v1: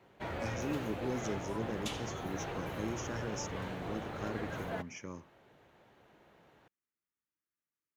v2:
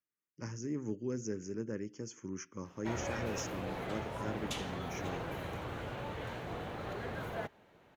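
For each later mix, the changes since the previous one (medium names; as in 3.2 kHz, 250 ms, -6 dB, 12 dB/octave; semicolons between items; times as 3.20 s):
background: entry +2.65 s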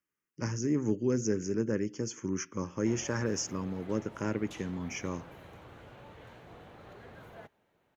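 speech +8.5 dB; background -10.0 dB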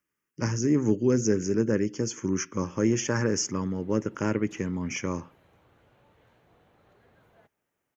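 speech +6.0 dB; background -11.0 dB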